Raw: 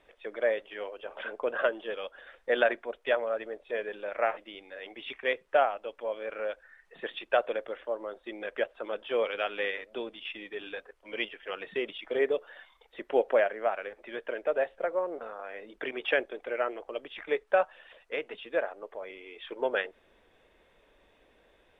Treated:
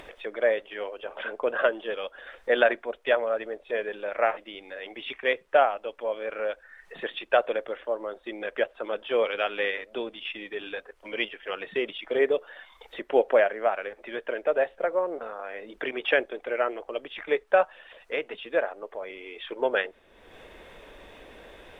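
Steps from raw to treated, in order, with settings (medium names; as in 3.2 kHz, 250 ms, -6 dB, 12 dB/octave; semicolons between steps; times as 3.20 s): upward compressor, threshold -40 dBFS; trim +4 dB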